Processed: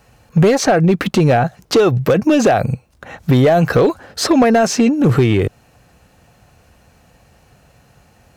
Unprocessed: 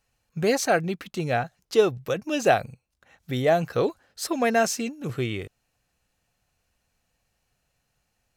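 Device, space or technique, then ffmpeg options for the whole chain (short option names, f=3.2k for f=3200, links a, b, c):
mastering chain: -filter_complex "[0:a]highpass=57,equalizer=f=1.2k:t=o:w=2.4:g=3,acrossover=split=1100|6700[a][b][c];[a]acompressor=threshold=-26dB:ratio=4[d];[b]acompressor=threshold=-31dB:ratio=4[e];[c]acompressor=threshold=-51dB:ratio=4[f];[d][e][f]amix=inputs=3:normalize=0,acompressor=threshold=-33dB:ratio=1.5,asoftclip=type=tanh:threshold=-22dB,tiltshelf=f=970:g=5.5,asoftclip=type=hard:threshold=-23.5dB,alimiter=level_in=27.5dB:limit=-1dB:release=50:level=0:latency=1,volume=-5.5dB"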